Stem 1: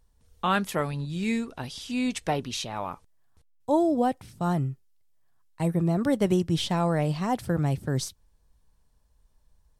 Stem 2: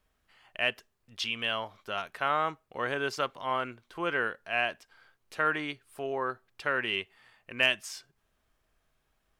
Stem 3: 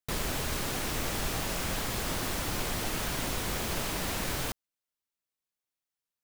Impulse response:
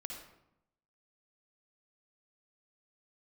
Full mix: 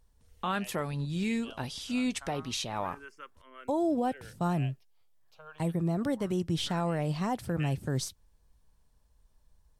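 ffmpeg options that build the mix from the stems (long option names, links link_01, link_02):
-filter_complex "[0:a]volume=-1dB[link_01];[1:a]acrossover=split=440[link_02][link_03];[link_02]aeval=exprs='val(0)*(1-0.7/2+0.7/2*cos(2*PI*5.7*n/s))':channel_layout=same[link_04];[link_03]aeval=exprs='val(0)*(1-0.7/2-0.7/2*cos(2*PI*5.7*n/s))':channel_layout=same[link_05];[link_04][link_05]amix=inputs=2:normalize=0,asplit=2[link_06][link_07];[link_07]afreqshift=0.25[link_08];[link_06][link_08]amix=inputs=2:normalize=1,volume=-12.5dB[link_09];[link_01][link_09]amix=inputs=2:normalize=0,alimiter=limit=-21.5dB:level=0:latency=1:release=219"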